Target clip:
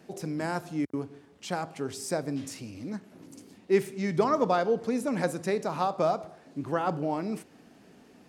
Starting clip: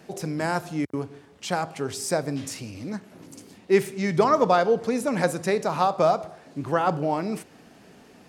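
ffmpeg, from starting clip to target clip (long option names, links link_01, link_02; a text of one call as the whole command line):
ffmpeg -i in.wav -af "equalizer=frequency=270:width_type=o:width=1.1:gain=4.5,volume=-6.5dB" out.wav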